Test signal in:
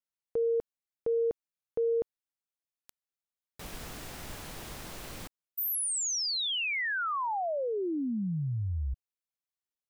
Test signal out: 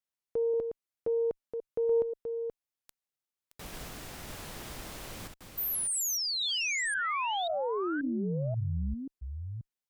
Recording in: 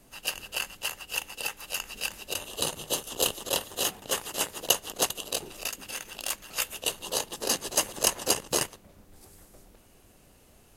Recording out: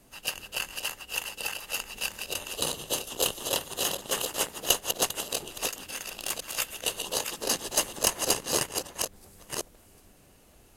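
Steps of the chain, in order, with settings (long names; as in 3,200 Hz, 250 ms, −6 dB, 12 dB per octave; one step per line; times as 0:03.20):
delay that plays each chunk backwards 534 ms, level −6 dB
harmonic generator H 2 −11 dB, 4 −13 dB, 5 −44 dB, 6 −31 dB, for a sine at −3 dBFS
level −1 dB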